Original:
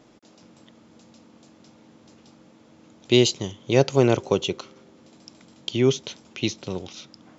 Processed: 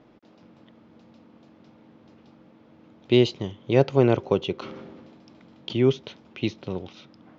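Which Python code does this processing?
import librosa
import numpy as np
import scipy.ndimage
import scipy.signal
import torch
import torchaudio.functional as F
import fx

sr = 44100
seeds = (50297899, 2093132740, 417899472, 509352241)

y = fx.air_absorb(x, sr, metres=270.0)
y = fx.sustainer(y, sr, db_per_s=27.0, at=(4.59, 5.8))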